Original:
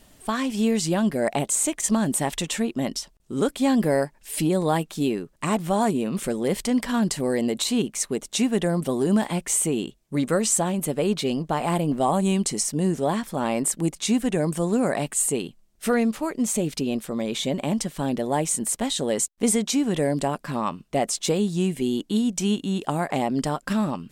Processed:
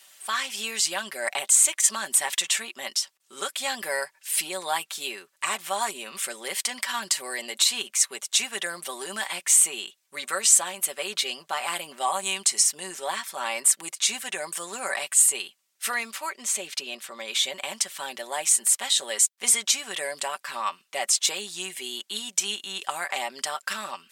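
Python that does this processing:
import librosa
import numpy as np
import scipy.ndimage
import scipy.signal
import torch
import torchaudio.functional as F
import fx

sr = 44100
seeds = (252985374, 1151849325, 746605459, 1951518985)

y = fx.high_shelf(x, sr, hz=8000.0, db=-8.5, at=(16.29, 17.28))
y = scipy.signal.sosfilt(scipy.signal.butter(2, 1400.0, 'highpass', fs=sr, output='sos'), y)
y = y + 0.56 * np.pad(y, (int(5.2 * sr / 1000.0), 0))[:len(y)]
y = y * librosa.db_to_amplitude(4.5)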